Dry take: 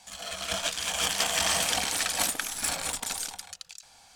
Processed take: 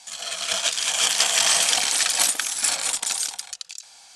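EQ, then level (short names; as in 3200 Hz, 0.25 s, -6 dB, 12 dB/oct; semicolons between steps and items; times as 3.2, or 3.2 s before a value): brick-wall FIR low-pass 12000 Hz; air absorption 58 m; RIAA curve recording; +3.0 dB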